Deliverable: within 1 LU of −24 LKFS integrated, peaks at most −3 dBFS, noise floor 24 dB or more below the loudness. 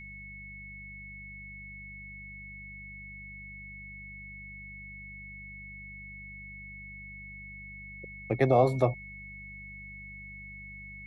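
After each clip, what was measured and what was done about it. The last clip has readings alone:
mains hum 50 Hz; hum harmonics up to 200 Hz; level of the hum −47 dBFS; interfering tone 2,200 Hz; level of the tone −44 dBFS; integrated loudness −36.0 LKFS; sample peak −11.0 dBFS; target loudness −24.0 LKFS
→ hum removal 50 Hz, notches 4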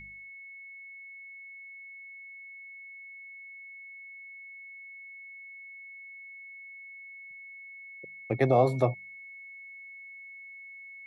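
mains hum none found; interfering tone 2,200 Hz; level of the tone −44 dBFS
→ notch filter 2,200 Hz, Q 30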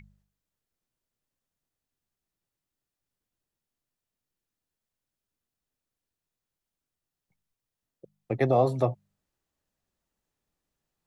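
interfering tone none found; integrated loudness −26.5 LKFS; sample peak −11.0 dBFS; target loudness −24.0 LKFS
→ level +2.5 dB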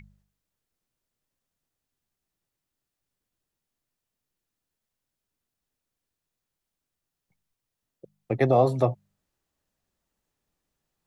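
integrated loudness −24.0 LKFS; sample peak −8.5 dBFS; background noise floor −86 dBFS

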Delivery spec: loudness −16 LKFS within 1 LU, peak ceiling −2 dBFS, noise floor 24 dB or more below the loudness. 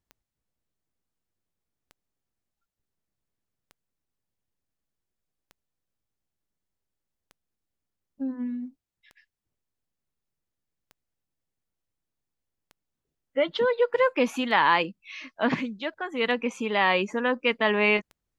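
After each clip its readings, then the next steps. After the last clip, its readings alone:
number of clicks 11; integrated loudness −25.5 LKFS; sample peak −8.0 dBFS; target loudness −16.0 LKFS
→ click removal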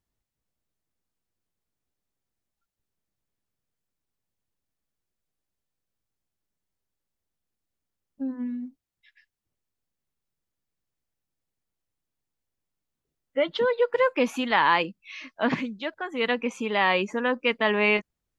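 number of clicks 0; integrated loudness −25.5 LKFS; sample peak −8.0 dBFS; target loudness −16.0 LKFS
→ level +9.5 dB
brickwall limiter −2 dBFS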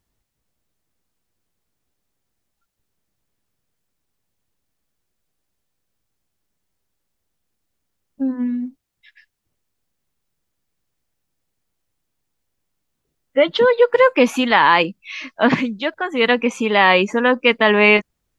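integrated loudness −16.0 LKFS; sample peak −2.0 dBFS; background noise floor −76 dBFS

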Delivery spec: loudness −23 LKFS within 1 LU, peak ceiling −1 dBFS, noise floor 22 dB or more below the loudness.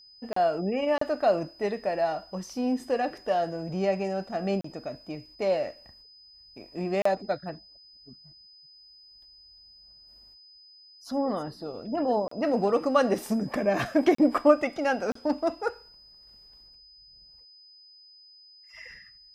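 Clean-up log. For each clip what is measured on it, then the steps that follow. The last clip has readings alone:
number of dropouts 7; longest dropout 34 ms; interfering tone 5,000 Hz; level of the tone −51 dBFS; integrated loudness −27.5 LKFS; sample peak −7.5 dBFS; target loudness −23.0 LKFS
→ repair the gap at 0:00.33/0:00.98/0:04.61/0:07.02/0:12.28/0:14.15/0:15.12, 34 ms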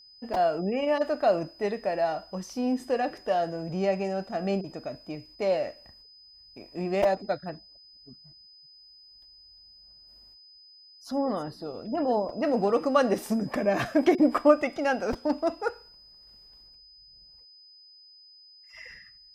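number of dropouts 0; interfering tone 5,000 Hz; level of the tone −51 dBFS
→ notch filter 5,000 Hz, Q 30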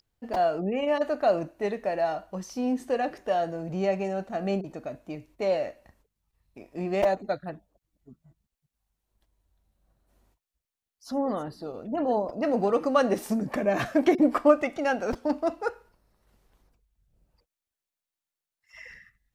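interfering tone none found; integrated loudness −27.5 LKFS; sample peak −7.5 dBFS; target loudness −23.0 LKFS
→ level +4.5 dB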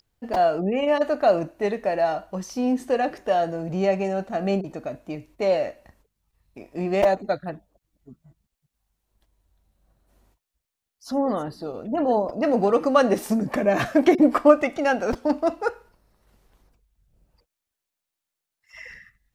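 integrated loudness −23.0 LKFS; sample peak −3.0 dBFS; background noise floor −85 dBFS

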